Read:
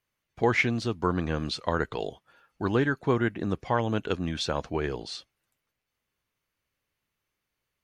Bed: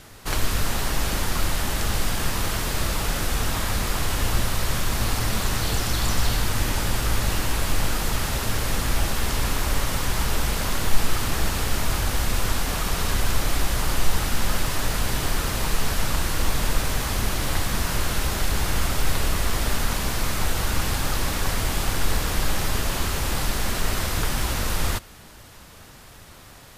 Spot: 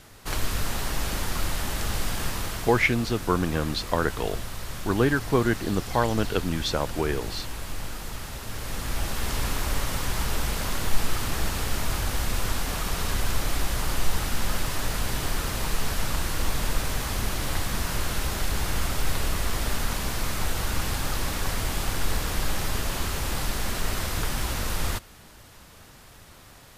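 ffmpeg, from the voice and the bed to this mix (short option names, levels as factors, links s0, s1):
-filter_complex "[0:a]adelay=2250,volume=1.33[s0];[1:a]volume=1.5,afade=t=out:st=2.24:d=0.66:silence=0.446684,afade=t=in:st=8.44:d=0.92:silence=0.421697[s1];[s0][s1]amix=inputs=2:normalize=0"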